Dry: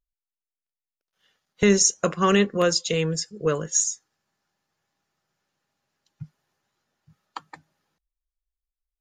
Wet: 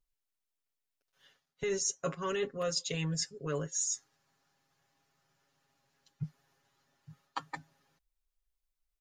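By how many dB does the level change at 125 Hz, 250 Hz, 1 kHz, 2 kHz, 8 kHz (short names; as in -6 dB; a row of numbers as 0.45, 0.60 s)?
-9.5, -16.0, -12.5, -13.0, -11.5 dB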